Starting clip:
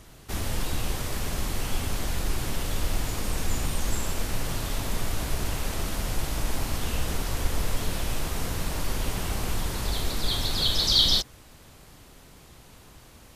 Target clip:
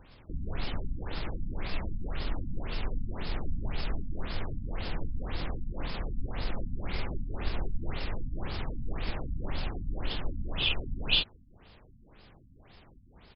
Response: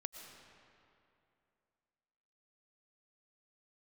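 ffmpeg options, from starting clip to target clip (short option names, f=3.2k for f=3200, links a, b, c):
-af "asetrate=35002,aresample=44100,atempo=1.25992,crystalizer=i=1.5:c=0,afftfilt=real='re*lt(b*sr/1024,260*pow(5400/260,0.5+0.5*sin(2*PI*1.9*pts/sr)))':imag='im*lt(b*sr/1024,260*pow(5400/260,0.5+0.5*sin(2*PI*1.9*pts/sr)))':win_size=1024:overlap=0.75,volume=-4dB"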